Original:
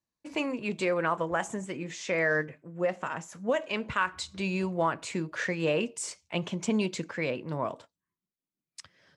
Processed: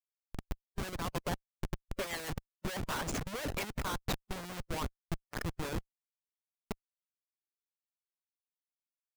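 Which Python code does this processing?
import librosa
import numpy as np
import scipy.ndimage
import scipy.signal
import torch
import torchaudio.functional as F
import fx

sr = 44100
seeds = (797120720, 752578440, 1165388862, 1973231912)

y = fx.doppler_pass(x, sr, speed_mps=17, closest_m=4.3, pass_at_s=3.01)
y = fx.schmitt(y, sr, flips_db=-44.0)
y = fx.hpss(y, sr, part='harmonic', gain_db=-15)
y = F.gain(torch.from_numpy(y), 11.5).numpy()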